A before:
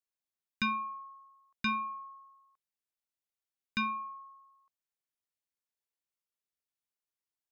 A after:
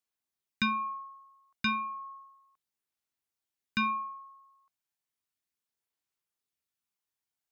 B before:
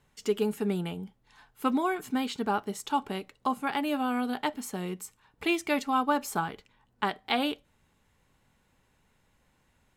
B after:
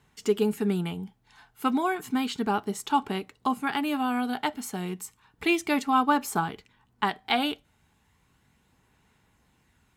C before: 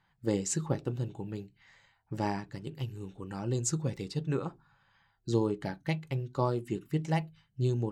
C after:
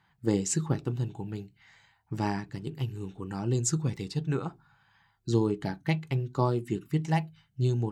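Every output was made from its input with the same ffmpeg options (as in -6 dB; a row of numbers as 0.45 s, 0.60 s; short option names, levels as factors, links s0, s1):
-af "highpass=45,equalizer=f=550:t=o:w=0.23:g=-9,aphaser=in_gain=1:out_gain=1:delay=1.4:decay=0.2:speed=0.33:type=sinusoidal,volume=1.33"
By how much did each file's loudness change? +2.5 LU, +2.5 LU, +3.0 LU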